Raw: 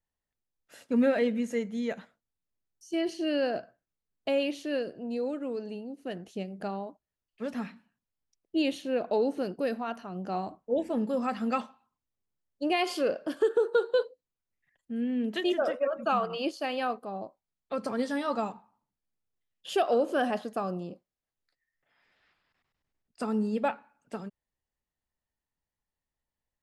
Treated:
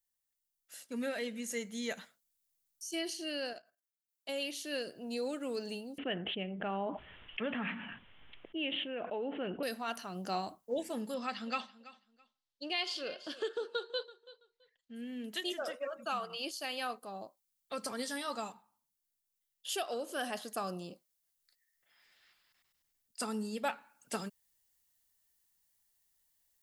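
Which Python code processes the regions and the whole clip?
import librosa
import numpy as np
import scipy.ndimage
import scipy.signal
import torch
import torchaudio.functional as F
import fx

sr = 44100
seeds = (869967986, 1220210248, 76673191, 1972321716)

y = fx.chain(x, sr, fx.level_steps(step_db=12),
    fx.highpass(hz=390.0, slope=6), at=(3.53, 4.29))
y = fx.chain(y, sr, fx.steep_lowpass(hz=3300.0, slope=96),
    fx.env_flatten(amount_pct=70), at=(5.98, 9.63))
y = fx.chain(y, sr, fx.lowpass_res(hz=4000.0, q=1.7),
    fx.echo_feedback(ms=331, feedback_pct=21, wet_db=-18.0), at=(11.14, 14.95))
y = F.preemphasis(torch.from_numpy(y), 0.9).numpy()
y = fx.notch(y, sr, hz=2500.0, q=24.0)
y = fx.rider(y, sr, range_db=10, speed_s=0.5)
y = y * librosa.db_to_amplitude(7.5)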